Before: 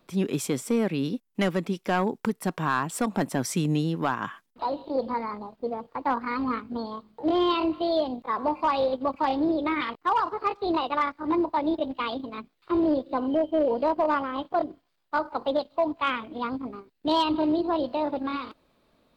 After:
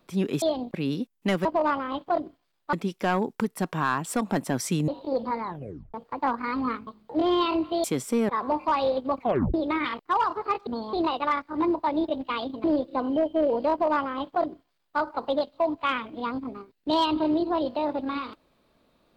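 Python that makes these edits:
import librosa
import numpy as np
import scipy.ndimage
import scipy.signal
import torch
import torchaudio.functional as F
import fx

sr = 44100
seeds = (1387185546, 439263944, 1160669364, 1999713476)

y = fx.edit(x, sr, fx.swap(start_s=0.42, length_s=0.45, other_s=7.93, other_length_s=0.32),
    fx.cut(start_s=3.73, length_s=0.98),
    fx.tape_stop(start_s=5.26, length_s=0.51),
    fx.move(start_s=6.7, length_s=0.26, to_s=10.63),
    fx.tape_stop(start_s=9.15, length_s=0.35),
    fx.cut(start_s=12.34, length_s=0.48),
    fx.duplicate(start_s=13.89, length_s=1.28, to_s=1.58), tone=tone)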